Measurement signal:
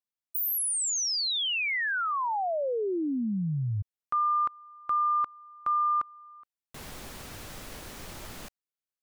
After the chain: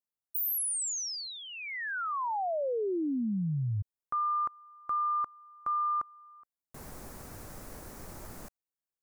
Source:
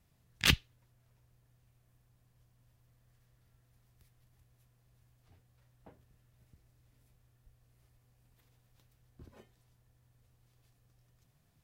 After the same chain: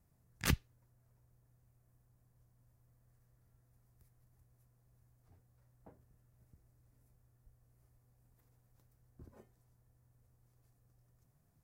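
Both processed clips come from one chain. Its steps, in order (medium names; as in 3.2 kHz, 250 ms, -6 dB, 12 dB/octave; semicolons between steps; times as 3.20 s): peaking EQ 3.2 kHz -14 dB 1.3 oct; trim -1.5 dB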